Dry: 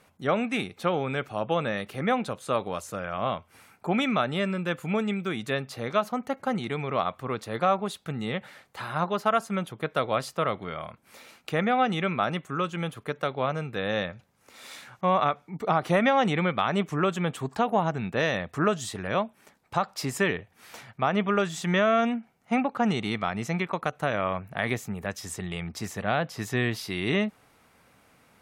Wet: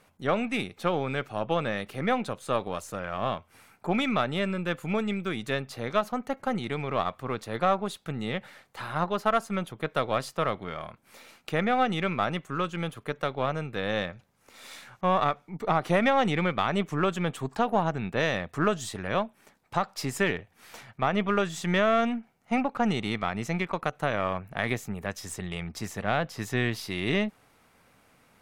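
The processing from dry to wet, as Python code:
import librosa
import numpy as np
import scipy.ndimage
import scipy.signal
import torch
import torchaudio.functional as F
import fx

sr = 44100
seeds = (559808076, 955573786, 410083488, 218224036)

y = np.where(x < 0.0, 10.0 ** (-3.0 / 20.0) * x, x)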